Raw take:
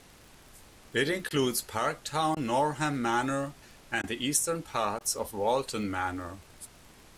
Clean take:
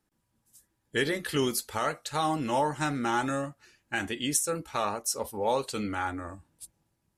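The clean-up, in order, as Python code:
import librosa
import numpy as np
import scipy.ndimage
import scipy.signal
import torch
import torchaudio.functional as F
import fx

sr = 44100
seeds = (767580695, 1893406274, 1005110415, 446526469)

y = fx.fix_declick_ar(x, sr, threshold=6.5)
y = fx.fix_interpolate(y, sr, at_s=(1.29, 2.35, 4.02, 4.99), length_ms=15.0)
y = fx.noise_reduce(y, sr, print_start_s=0.0, print_end_s=0.5, reduce_db=21.0)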